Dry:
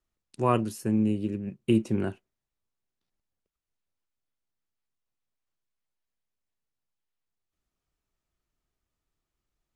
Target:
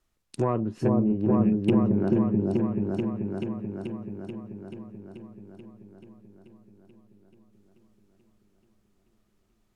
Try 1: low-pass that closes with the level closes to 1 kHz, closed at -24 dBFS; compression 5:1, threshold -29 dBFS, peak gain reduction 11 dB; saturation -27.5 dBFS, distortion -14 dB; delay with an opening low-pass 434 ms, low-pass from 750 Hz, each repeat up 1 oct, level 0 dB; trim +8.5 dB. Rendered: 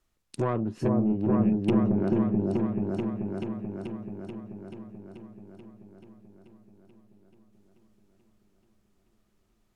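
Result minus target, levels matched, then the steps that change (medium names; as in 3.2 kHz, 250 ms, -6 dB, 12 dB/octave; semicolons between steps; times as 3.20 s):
saturation: distortion +9 dB
change: saturation -21 dBFS, distortion -23 dB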